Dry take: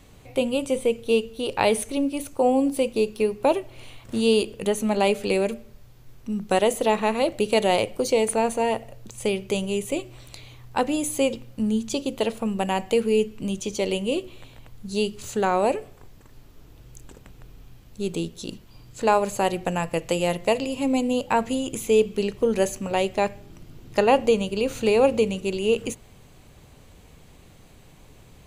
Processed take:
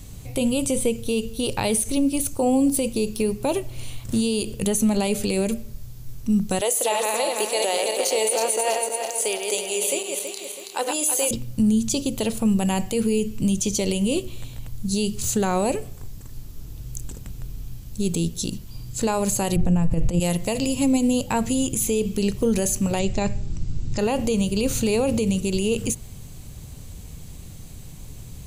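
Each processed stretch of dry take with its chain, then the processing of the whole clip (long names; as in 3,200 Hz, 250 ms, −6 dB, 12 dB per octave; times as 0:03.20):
0:06.61–0:11.31: feedback delay that plays each chunk backwards 163 ms, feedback 68%, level −5 dB + high-pass filter 420 Hz 24 dB per octave
0:19.56–0:20.20: compressor whose output falls as the input rises −27 dBFS, ratio −0.5 + spectral tilt −3.5 dB per octave
0:22.99–0:23.99: elliptic low-pass filter 7,800 Hz, stop band 50 dB + low-shelf EQ 110 Hz +10.5 dB + notch filter 3,200 Hz, Q 20
whole clip: bass and treble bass +13 dB, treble +14 dB; brickwall limiter −12.5 dBFS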